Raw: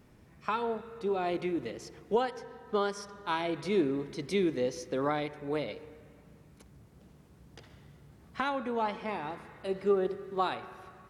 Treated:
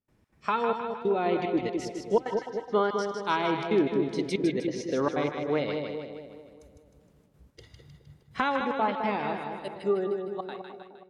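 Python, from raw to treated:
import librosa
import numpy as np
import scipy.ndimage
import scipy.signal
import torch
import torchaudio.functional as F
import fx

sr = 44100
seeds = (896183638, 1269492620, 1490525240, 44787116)

p1 = fx.fade_out_tail(x, sr, length_s=2.02)
p2 = fx.env_lowpass_down(p1, sr, base_hz=2500.0, full_db=-25.0)
p3 = fx.rider(p2, sr, range_db=3, speed_s=0.5)
p4 = p2 + (p3 * 10.0 ** (-3.0 / 20.0))
p5 = fx.noise_reduce_blind(p4, sr, reduce_db=12)
p6 = fx.step_gate(p5, sr, bpm=186, pattern='.xx.xxxxx', floor_db=-24.0, edge_ms=4.5)
y = p6 + fx.echo_split(p6, sr, split_hz=920.0, low_ms=209, high_ms=155, feedback_pct=52, wet_db=-5, dry=0)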